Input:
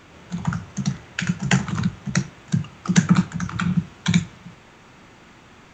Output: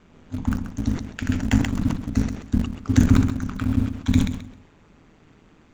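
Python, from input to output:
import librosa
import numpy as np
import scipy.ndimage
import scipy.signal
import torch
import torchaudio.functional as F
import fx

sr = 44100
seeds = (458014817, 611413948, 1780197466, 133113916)

p1 = fx.low_shelf(x, sr, hz=420.0, db=11.5)
p2 = np.where(np.abs(p1) >= 10.0 ** (-12.0 / 20.0), p1, 0.0)
p3 = p1 + F.gain(torch.from_numpy(p2), -10.0).numpy()
p4 = p3 * np.sin(2.0 * np.pi * 80.0 * np.arange(len(p3)) / sr)
p5 = p4 + fx.echo_feedback(p4, sr, ms=132, feedback_pct=27, wet_db=-11, dry=0)
p6 = fx.sustainer(p5, sr, db_per_s=93.0)
y = F.gain(torch.from_numpy(p6), -9.5).numpy()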